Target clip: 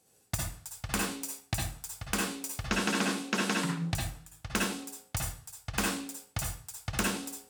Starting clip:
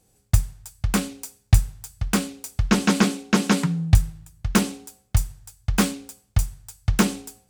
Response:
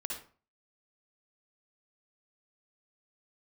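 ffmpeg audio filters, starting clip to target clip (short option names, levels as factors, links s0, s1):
-filter_complex "[0:a]highpass=f=370:p=1,acompressor=threshold=0.0562:ratio=6[s0];[1:a]atrim=start_sample=2205[s1];[s0][s1]afir=irnorm=-1:irlink=0"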